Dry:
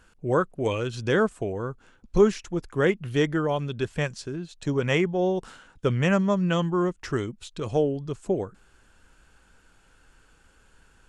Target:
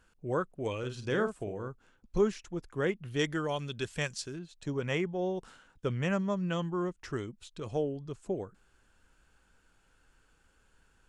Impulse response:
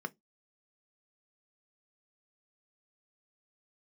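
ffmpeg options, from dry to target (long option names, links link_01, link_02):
-filter_complex "[0:a]asettb=1/sr,asplit=3[link_01][link_02][link_03];[link_01]atrim=end=0.784[link_04];[link_02]atrim=start=0.78:end=1.68,asetpts=PTS-STARTPTS,afade=type=in:duration=0.004:curve=qsin,afade=type=out:start_time=0.896:duration=0.004:curve=qsin,asplit=2[link_05][link_06];[link_06]adelay=48,volume=-7.5dB[link_07];[link_05][link_07]amix=inputs=2:normalize=0,atrim=end_sample=39690[link_08];[link_03]atrim=start=1.676[link_09];[link_04][link_08]acrossfade=duration=0.004:curve1=hsin:curve2=qsin[link_10];[link_10][link_09]acrossfade=duration=0.004:curve1=qsin:curve2=hsin,asettb=1/sr,asplit=3[link_11][link_12][link_13];[link_11]atrim=end=3.194[link_14];[link_12]atrim=start=3.19:end=4.39,asetpts=PTS-STARTPTS,afade=type=in:duration=0.004:curve=qsin,afade=type=out:start_time=1.196:duration=0.004:curve=qsin,highshelf=frequency=2200:gain=11.5[link_15];[link_13]atrim=start=4.386[link_16];[link_14][link_15]acrossfade=duration=0.004:curve1=hsin:curve2=qsin[link_17];[link_17][link_16]acrossfade=duration=0.004:curve1=qsin:curve2=hsin,volume=-8.5dB"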